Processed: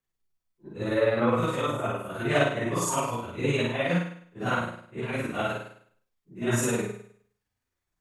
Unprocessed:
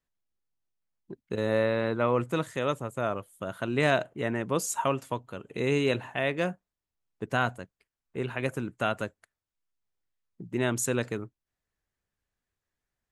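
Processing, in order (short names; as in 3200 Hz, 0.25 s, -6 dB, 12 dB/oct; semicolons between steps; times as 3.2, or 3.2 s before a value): phase scrambler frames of 0.2 s; flutter echo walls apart 5.8 m, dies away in 0.96 s; granular stretch 0.61×, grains 0.103 s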